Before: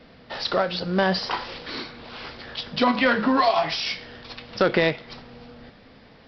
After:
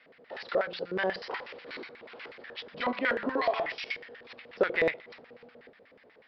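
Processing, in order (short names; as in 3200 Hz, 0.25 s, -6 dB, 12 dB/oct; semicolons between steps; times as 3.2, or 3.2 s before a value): LFO band-pass square 8.2 Hz 470–2000 Hz; 3.29–3.74 de-hum 148.4 Hz, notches 27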